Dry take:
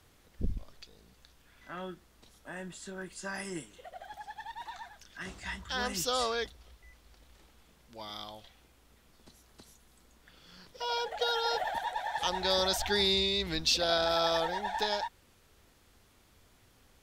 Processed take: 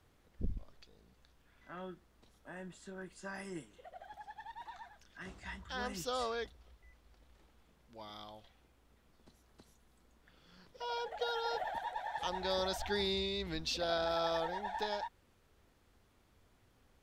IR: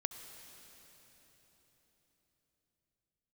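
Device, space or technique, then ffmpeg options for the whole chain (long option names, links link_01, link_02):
behind a face mask: -af "highshelf=frequency=2600:gain=-8,volume=-4.5dB"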